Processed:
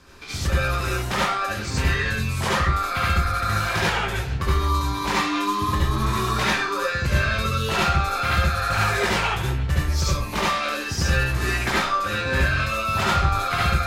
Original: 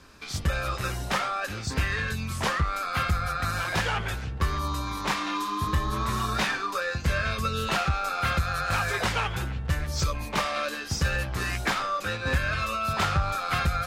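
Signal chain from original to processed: reverberation RT60 0.30 s, pre-delay 64 ms, DRR -4 dB

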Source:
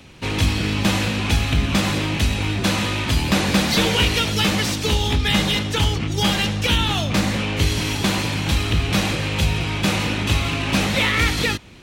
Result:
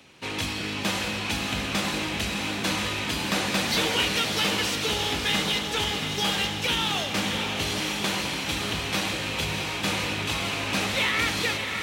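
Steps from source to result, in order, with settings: high-pass 360 Hz 6 dB/octave; echo that smears into a reverb 619 ms, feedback 57%, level -5.5 dB; trim -5 dB

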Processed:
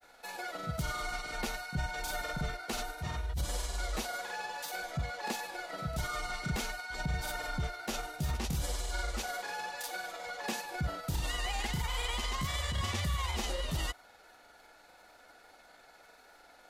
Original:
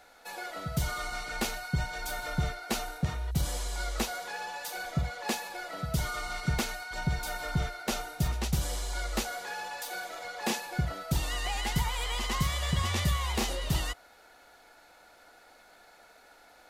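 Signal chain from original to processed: peak limiter -23.5 dBFS, peak gain reduction 8 dB; granulator 100 ms, spray 29 ms, pitch spread up and down by 0 st

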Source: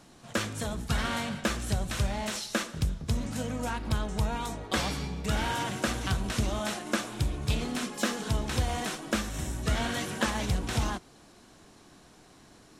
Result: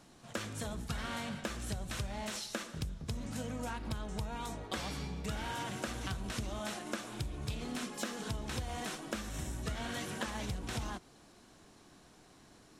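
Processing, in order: compression, threshold -30 dBFS, peak gain reduction 8.5 dB; trim -4.5 dB

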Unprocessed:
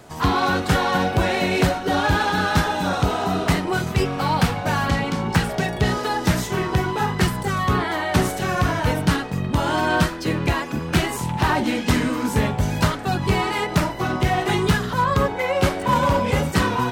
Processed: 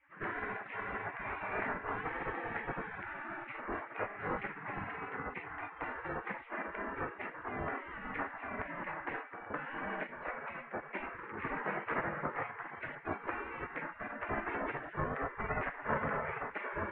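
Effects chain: on a send at -18.5 dB: reverberation RT60 1.5 s, pre-delay 85 ms; on the sum: mistuned SSB -220 Hz 220–2100 Hz; spectral gate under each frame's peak -20 dB weak; distance through air 470 m; trim +3 dB

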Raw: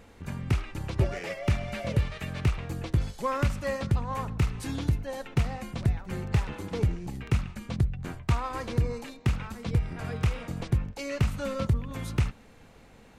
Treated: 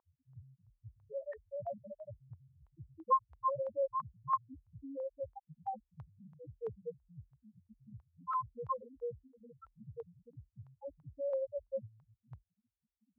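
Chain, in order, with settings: slices played last to first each 138 ms, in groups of 2; loudest bins only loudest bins 1; LFO low-pass saw up 3 Hz 970–3400 Hz; Bessel high-pass 650 Hz, order 2; trim +7.5 dB

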